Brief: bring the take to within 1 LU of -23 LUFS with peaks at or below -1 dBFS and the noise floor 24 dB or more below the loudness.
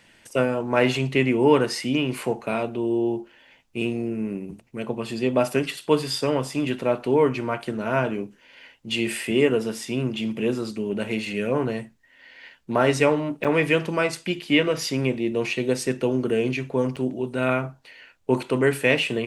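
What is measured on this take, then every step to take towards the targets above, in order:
dropouts 2; longest dropout 6.8 ms; loudness -24.0 LUFS; peak -4.0 dBFS; loudness target -23.0 LUFS
-> interpolate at 13.44/16.96, 6.8 ms; gain +1 dB

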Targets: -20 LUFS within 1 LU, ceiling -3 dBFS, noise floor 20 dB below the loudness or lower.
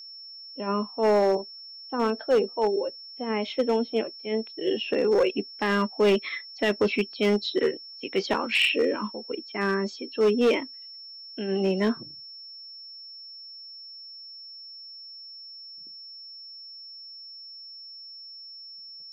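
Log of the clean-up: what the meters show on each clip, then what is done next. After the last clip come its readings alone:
clipped 0.8%; flat tops at -16.0 dBFS; steady tone 5400 Hz; tone level -41 dBFS; loudness -26.0 LUFS; peak -16.0 dBFS; loudness target -20.0 LUFS
-> clip repair -16 dBFS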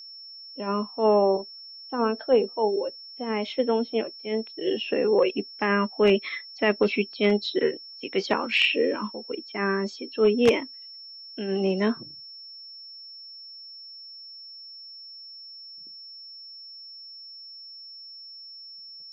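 clipped 0.0%; steady tone 5400 Hz; tone level -41 dBFS
-> notch 5400 Hz, Q 30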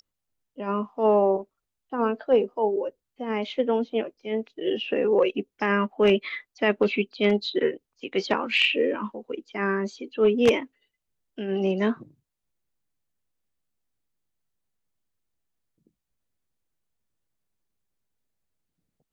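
steady tone none; loudness -25.0 LUFS; peak -7.0 dBFS; loudness target -20.0 LUFS
-> gain +5 dB; limiter -3 dBFS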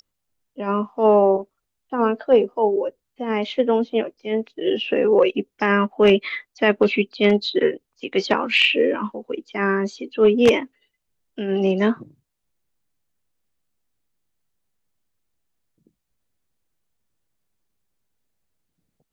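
loudness -20.0 LUFS; peak -3.0 dBFS; noise floor -78 dBFS

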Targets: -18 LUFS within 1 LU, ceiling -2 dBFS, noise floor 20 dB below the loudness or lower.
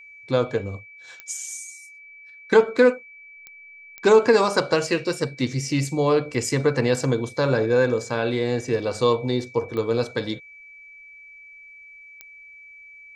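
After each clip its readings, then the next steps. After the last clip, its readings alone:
clicks 5; steady tone 2300 Hz; tone level -43 dBFS; loudness -22.0 LUFS; peak -3.5 dBFS; loudness target -18.0 LUFS
-> de-click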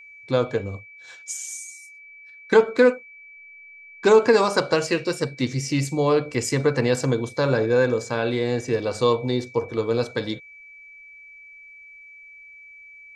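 clicks 0; steady tone 2300 Hz; tone level -43 dBFS
-> notch 2300 Hz, Q 30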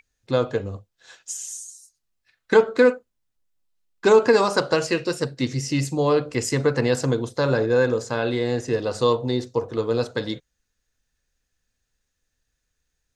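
steady tone none; loudness -22.0 LUFS; peak -4.0 dBFS; loudness target -18.0 LUFS
-> gain +4 dB; limiter -2 dBFS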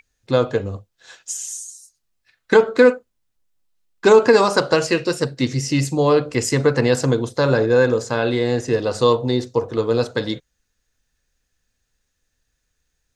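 loudness -18.5 LUFS; peak -2.0 dBFS; noise floor -74 dBFS

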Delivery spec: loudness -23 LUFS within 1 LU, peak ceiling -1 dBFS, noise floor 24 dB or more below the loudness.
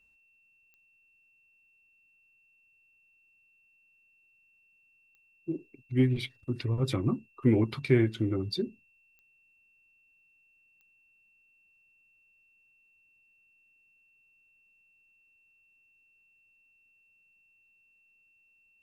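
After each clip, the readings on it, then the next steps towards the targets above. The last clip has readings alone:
clicks 4; steady tone 2700 Hz; tone level -64 dBFS; loudness -29.5 LUFS; peak -10.5 dBFS; loudness target -23.0 LUFS
-> de-click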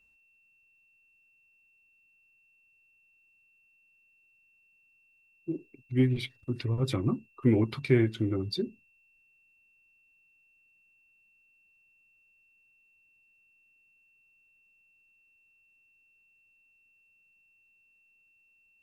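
clicks 0; steady tone 2700 Hz; tone level -64 dBFS
-> notch 2700 Hz, Q 30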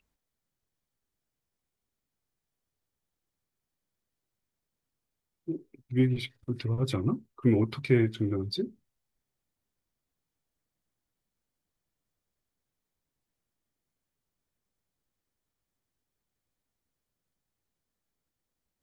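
steady tone none; loudness -29.5 LUFS; peak -11.0 dBFS; loudness target -23.0 LUFS
-> gain +6.5 dB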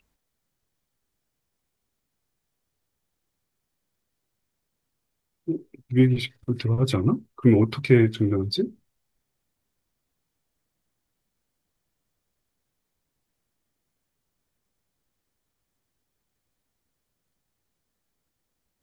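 loudness -23.0 LUFS; peak -4.5 dBFS; noise floor -80 dBFS

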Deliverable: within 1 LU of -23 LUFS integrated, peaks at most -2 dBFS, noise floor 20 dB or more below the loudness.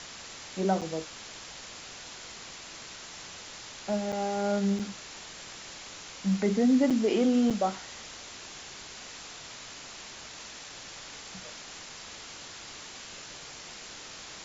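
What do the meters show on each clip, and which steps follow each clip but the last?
dropouts 5; longest dropout 6.2 ms; noise floor -45 dBFS; noise floor target -53 dBFS; loudness -33.0 LUFS; peak -14.5 dBFS; loudness target -23.0 LUFS
-> interpolate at 0.81/4.12/4.79/6.9/7.5, 6.2 ms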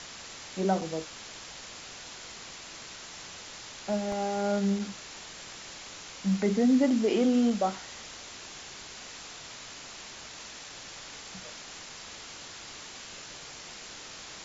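dropouts 0; noise floor -45 dBFS; noise floor target -53 dBFS
-> denoiser 8 dB, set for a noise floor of -45 dBFS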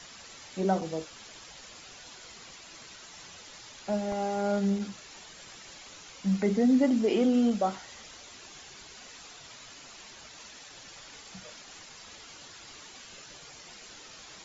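noise floor -49 dBFS; loudness -28.0 LUFS; peak -14.5 dBFS; loudness target -23.0 LUFS
-> gain +5 dB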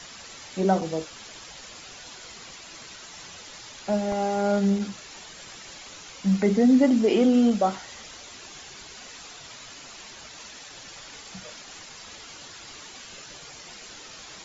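loudness -23.0 LUFS; peak -9.5 dBFS; noise floor -44 dBFS

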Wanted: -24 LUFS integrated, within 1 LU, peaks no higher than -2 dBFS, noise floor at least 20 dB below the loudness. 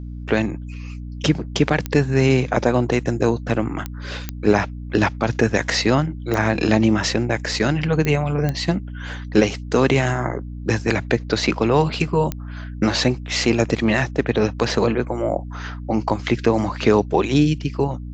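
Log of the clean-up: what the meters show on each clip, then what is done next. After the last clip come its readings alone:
clicks 7; hum 60 Hz; harmonics up to 300 Hz; hum level -29 dBFS; loudness -20.5 LUFS; peak -2.5 dBFS; loudness target -24.0 LUFS
-> de-click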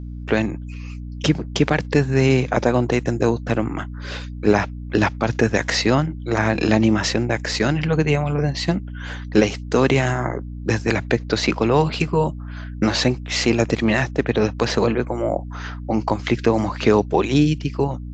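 clicks 0; hum 60 Hz; harmonics up to 300 Hz; hum level -29 dBFS
-> notches 60/120/180/240/300 Hz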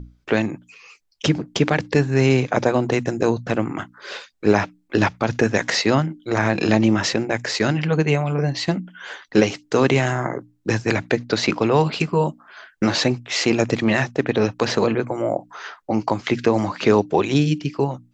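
hum none; loudness -21.0 LUFS; peak -2.5 dBFS; loudness target -24.0 LUFS
-> gain -3 dB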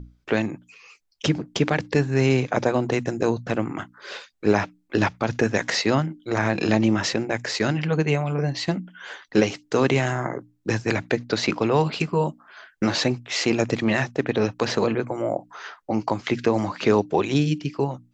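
loudness -24.0 LUFS; peak -5.5 dBFS; noise floor -64 dBFS

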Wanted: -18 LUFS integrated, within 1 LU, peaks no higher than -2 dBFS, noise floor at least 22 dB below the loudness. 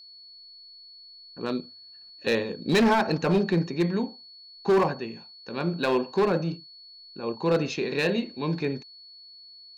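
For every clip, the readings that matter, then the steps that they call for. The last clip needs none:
clipped 1.4%; flat tops at -16.5 dBFS; steady tone 4400 Hz; tone level -46 dBFS; loudness -26.5 LUFS; peak -16.5 dBFS; loudness target -18.0 LUFS
-> clip repair -16.5 dBFS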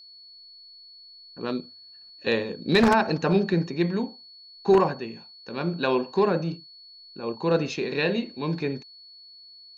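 clipped 0.0%; steady tone 4400 Hz; tone level -46 dBFS
-> notch 4400 Hz, Q 30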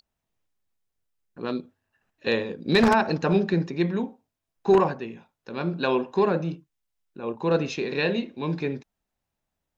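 steady tone none; loudness -25.0 LUFS; peak -7.5 dBFS; loudness target -18.0 LUFS
-> gain +7 dB; limiter -2 dBFS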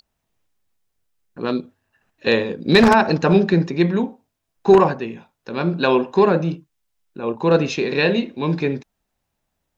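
loudness -18.5 LUFS; peak -2.0 dBFS; noise floor -77 dBFS

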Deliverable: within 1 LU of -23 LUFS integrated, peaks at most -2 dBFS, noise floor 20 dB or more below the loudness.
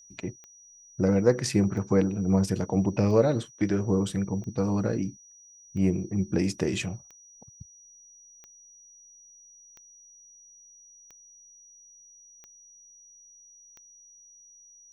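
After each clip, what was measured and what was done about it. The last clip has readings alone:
clicks 11; steady tone 5800 Hz; tone level -51 dBFS; loudness -26.5 LUFS; peak -8.0 dBFS; loudness target -23.0 LUFS
-> de-click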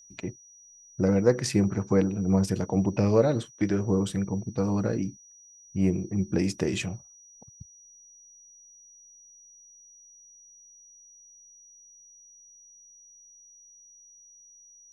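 clicks 0; steady tone 5800 Hz; tone level -51 dBFS
-> notch 5800 Hz, Q 30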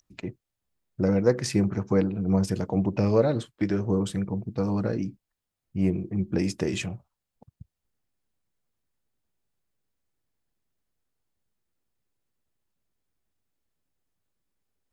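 steady tone none; loudness -26.5 LUFS; peak -8.0 dBFS; loudness target -23.0 LUFS
-> gain +3.5 dB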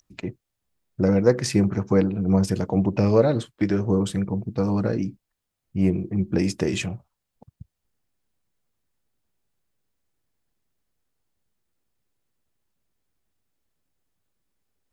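loudness -23.0 LUFS; peak -4.5 dBFS; noise floor -82 dBFS

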